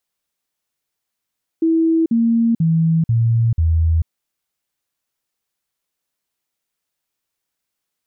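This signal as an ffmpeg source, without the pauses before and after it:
-f lavfi -i "aevalsrc='0.251*clip(min(mod(t,0.49),0.44-mod(t,0.49))/0.005,0,1)*sin(2*PI*326*pow(2,-floor(t/0.49)/2)*mod(t,0.49))':d=2.45:s=44100"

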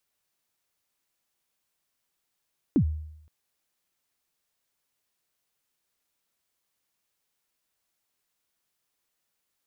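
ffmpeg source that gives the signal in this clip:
-f lavfi -i "aevalsrc='0.168*pow(10,-3*t/0.78)*sin(2*PI*(340*0.082/log(77/340)*(exp(log(77/340)*min(t,0.082)/0.082)-1)+77*max(t-0.082,0)))':d=0.52:s=44100"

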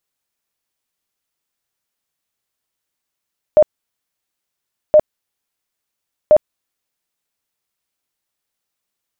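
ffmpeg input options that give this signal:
-f lavfi -i "aevalsrc='0.596*sin(2*PI*609*mod(t,1.37))*lt(mod(t,1.37),34/609)':d=4.11:s=44100"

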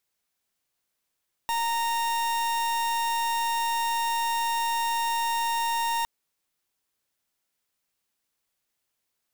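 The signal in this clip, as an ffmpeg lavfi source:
-f lavfi -i "aevalsrc='0.0473*(2*lt(mod(926*t,1),0.41)-1)':d=4.56:s=44100"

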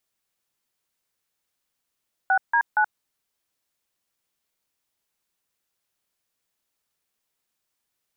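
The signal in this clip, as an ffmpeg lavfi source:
-f lavfi -i "aevalsrc='0.112*clip(min(mod(t,0.234),0.077-mod(t,0.234))/0.002,0,1)*(eq(floor(t/0.234),0)*(sin(2*PI*770*mod(t,0.234))+sin(2*PI*1477*mod(t,0.234)))+eq(floor(t/0.234),1)*(sin(2*PI*941*mod(t,0.234))+sin(2*PI*1633*mod(t,0.234)))+eq(floor(t/0.234),2)*(sin(2*PI*852*mod(t,0.234))+sin(2*PI*1477*mod(t,0.234))))':d=0.702:s=44100"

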